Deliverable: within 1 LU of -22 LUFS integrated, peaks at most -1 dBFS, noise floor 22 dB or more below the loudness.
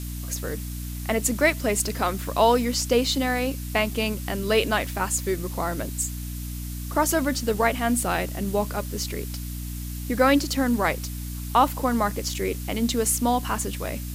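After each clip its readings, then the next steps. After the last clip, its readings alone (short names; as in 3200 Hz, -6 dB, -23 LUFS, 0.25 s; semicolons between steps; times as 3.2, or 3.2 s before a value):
hum 60 Hz; harmonics up to 300 Hz; hum level -30 dBFS; noise floor -33 dBFS; noise floor target -47 dBFS; loudness -25.0 LUFS; peak -6.0 dBFS; loudness target -22.0 LUFS
-> de-hum 60 Hz, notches 5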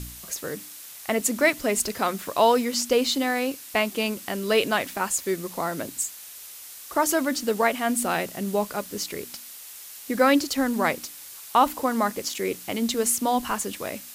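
hum none; noise floor -42 dBFS; noise floor target -47 dBFS
-> noise print and reduce 6 dB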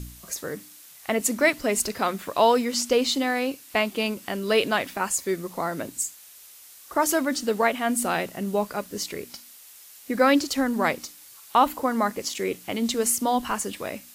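noise floor -48 dBFS; loudness -25.0 LUFS; peak -6.5 dBFS; loudness target -22.0 LUFS
-> gain +3 dB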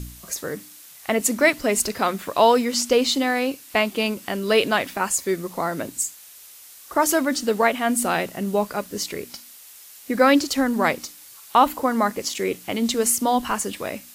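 loudness -22.0 LUFS; peak -3.5 dBFS; noise floor -45 dBFS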